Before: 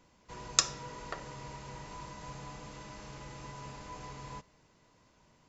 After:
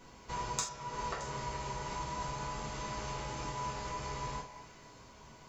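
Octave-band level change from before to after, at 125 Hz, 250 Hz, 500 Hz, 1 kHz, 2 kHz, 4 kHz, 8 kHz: +4.0 dB, +3.0 dB, +4.5 dB, +6.5 dB, +1.5 dB, -5.5 dB, no reading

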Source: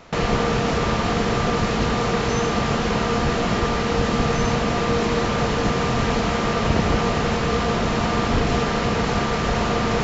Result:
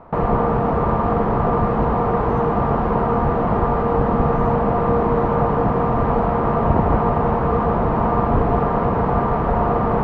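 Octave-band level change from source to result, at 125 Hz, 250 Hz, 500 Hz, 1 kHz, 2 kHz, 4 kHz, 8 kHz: +3.0 dB, +1.5 dB, +3.5 dB, +5.0 dB, -7.0 dB, under -20 dB, no reading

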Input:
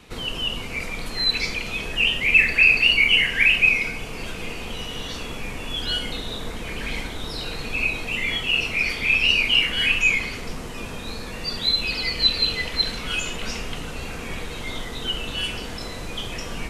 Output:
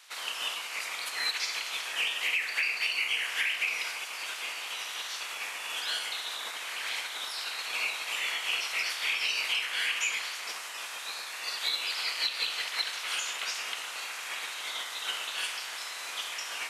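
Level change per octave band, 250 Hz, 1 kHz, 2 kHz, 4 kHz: under -25 dB, -3.0 dB, -10.5 dB, -8.5 dB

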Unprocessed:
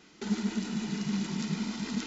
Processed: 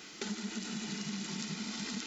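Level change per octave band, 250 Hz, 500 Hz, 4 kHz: -8.5 dB, -5.0 dB, +1.0 dB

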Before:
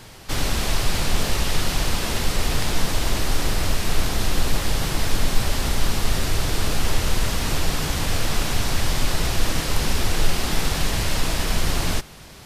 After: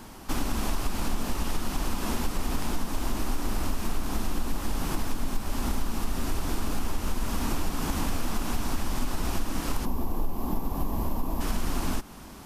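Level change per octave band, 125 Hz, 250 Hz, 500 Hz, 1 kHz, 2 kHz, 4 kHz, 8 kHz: -8.5 dB, -2.5 dB, -8.0 dB, -5.5 dB, -11.5 dB, -13.5 dB, -10.5 dB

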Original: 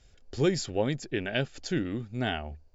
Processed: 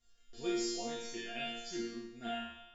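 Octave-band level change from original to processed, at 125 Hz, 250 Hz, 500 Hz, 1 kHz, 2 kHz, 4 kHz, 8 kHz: -25.5 dB, -9.0 dB, -10.0 dB, -5.5 dB, -9.5 dB, -5.0 dB, no reading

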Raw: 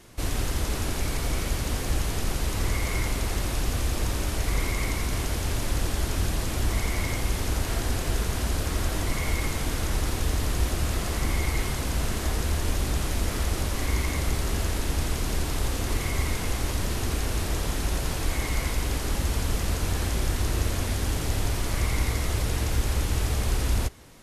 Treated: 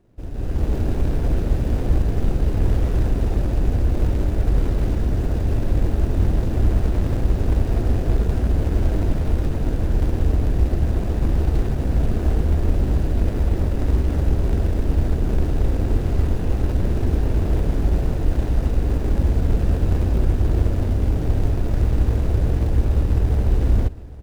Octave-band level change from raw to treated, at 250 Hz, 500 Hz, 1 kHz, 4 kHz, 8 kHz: +7.5 dB, +5.5 dB, -1.5 dB, -10.5 dB, -15.0 dB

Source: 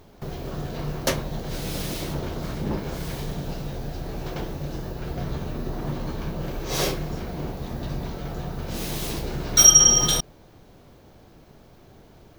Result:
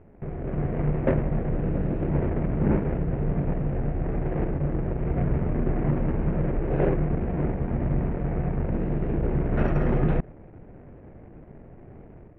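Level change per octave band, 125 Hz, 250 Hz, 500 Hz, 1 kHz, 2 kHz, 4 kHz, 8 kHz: +6.0 dB, +5.5 dB, +3.5 dB, -1.5 dB, -4.0 dB, under -35 dB, under -40 dB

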